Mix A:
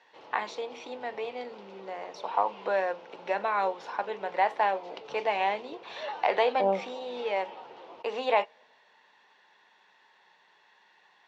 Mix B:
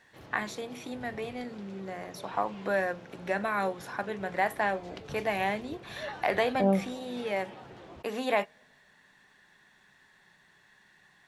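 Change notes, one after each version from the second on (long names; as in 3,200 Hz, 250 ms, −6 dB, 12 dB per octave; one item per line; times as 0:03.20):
master: remove loudspeaker in its box 410–5,600 Hz, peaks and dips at 480 Hz +6 dB, 910 Hz +9 dB, 1,700 Hz −5 dB, 2,800 Hz +4 dB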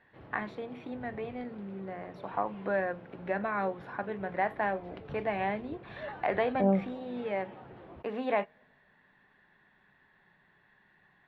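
master: add high-frequency loss of the air 460 metres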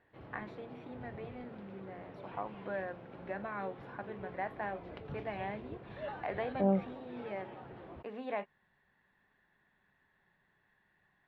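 first voice −7.5 dB
reverb: off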